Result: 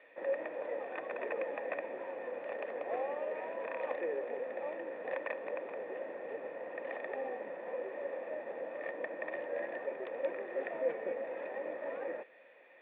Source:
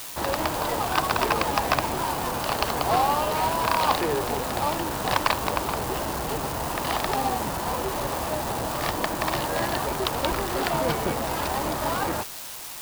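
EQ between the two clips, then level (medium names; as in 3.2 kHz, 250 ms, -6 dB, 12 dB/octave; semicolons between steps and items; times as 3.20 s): cascade formant filter e; high-pass 230 Hz 24 dB/octave; -1.0 dB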